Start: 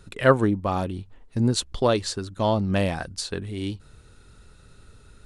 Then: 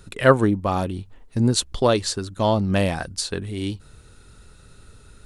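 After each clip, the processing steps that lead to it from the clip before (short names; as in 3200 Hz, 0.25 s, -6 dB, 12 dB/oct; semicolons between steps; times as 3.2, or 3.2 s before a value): high shelf 8600 Hz +6.5 dB; gain +2.5 dB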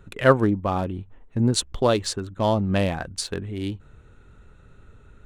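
Wiener smoothing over 9 samples; gain -1.5 dB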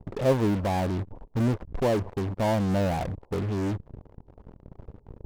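steep low-pass 990 Hz 72 dB/oct; in parallel at -8 dB: fuzz box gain 43 dB, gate -45 dBFS; on the sum: gain -8 dB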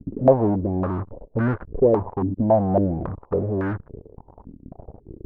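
stepped low-pass 3.6 Hz 270–1500 Hz; gain +2 dB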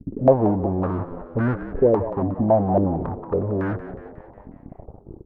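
frequency-shifting echo 0.181 s, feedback 54%, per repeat +77 Hz, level -13 dB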